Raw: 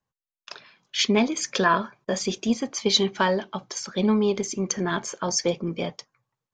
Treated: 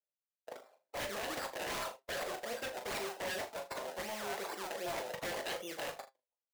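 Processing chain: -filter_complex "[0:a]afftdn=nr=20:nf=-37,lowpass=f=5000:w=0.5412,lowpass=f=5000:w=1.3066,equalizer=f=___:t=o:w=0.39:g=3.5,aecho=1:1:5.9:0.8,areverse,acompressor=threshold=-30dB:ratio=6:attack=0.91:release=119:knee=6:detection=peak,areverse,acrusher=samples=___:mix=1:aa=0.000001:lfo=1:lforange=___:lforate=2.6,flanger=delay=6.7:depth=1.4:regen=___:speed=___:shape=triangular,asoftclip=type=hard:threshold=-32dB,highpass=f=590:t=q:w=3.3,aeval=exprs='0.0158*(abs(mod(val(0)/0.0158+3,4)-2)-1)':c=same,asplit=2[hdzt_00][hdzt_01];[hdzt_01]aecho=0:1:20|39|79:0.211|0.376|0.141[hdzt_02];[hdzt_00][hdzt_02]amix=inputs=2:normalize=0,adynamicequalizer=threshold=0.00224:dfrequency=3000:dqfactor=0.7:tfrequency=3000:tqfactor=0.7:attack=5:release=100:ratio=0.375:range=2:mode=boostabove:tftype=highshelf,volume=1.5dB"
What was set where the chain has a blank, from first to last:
2300, 27, 27, 72, 0.87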